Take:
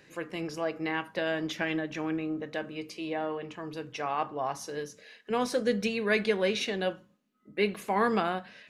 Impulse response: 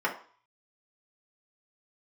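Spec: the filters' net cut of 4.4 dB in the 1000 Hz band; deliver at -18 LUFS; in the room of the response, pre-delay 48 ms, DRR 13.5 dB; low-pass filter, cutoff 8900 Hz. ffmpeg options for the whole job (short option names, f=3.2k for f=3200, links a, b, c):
-filter_complex "[0:a]lowpass=8.9k,equalizer=f=1k:t=o:g=-6,asplit=2[a][b];[1:a]atrim=start_sample=2205,adelay=48[c];[b][c]afir=irnorm=-1:irlink=0,volume=-24.5dB[d];[a][d]amix=inputs=2:normalize=0,volume=14.5dB"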